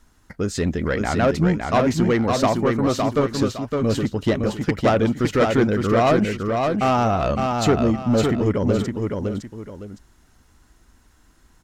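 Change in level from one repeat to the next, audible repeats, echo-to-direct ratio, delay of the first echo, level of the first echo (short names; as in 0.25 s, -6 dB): -10.5 dB, 2, -3.5 dB, 0.561 s, -4.0 dB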